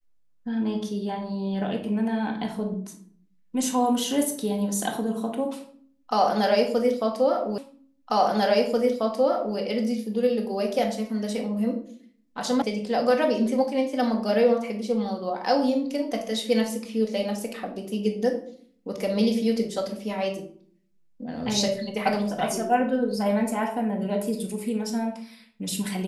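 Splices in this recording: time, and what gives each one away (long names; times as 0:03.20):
0:07.58: the same again, the last 1.99 s
0:12.62: cut off before it has died away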